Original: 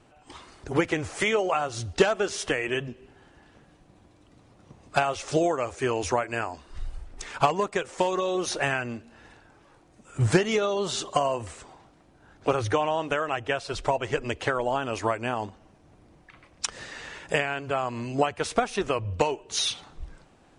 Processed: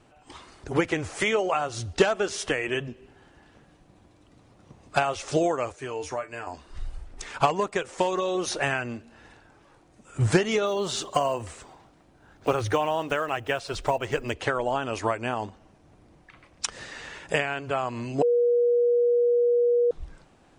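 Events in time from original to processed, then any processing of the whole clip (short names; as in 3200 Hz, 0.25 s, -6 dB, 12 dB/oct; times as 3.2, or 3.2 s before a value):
5.72–6.47 resonator 150 Hz, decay 0.17 s, mix 80%
10.66–14.34 block floating point 7-bit
18.22–19.91 bleep 480 Hz -18 dBFS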